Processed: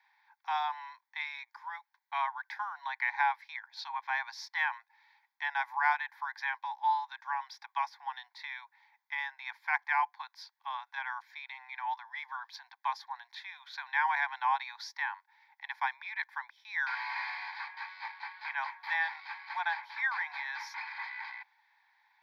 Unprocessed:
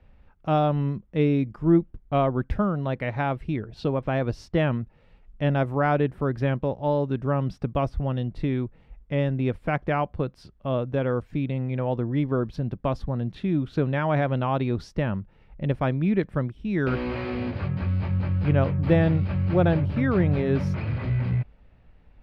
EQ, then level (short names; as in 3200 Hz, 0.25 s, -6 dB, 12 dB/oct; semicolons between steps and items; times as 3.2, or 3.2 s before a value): steep high-pass 840 Hz 96 dB/oct; dynamic EQ 3600 Hz, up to -3 dB, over -50 dBFS, Q 2.1; fixed phaser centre 1900 Hz, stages 8; +5.5 dB